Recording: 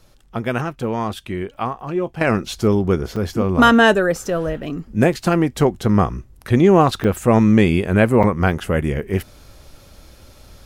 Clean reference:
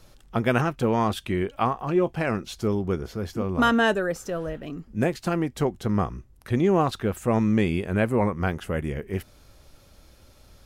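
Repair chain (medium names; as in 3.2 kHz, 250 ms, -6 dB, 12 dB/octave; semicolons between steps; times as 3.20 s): interpolate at 1.54/3.16/7.04/8.23 s, 5.6 ms; trim 0 dB, from 2.21 s -8.5 dB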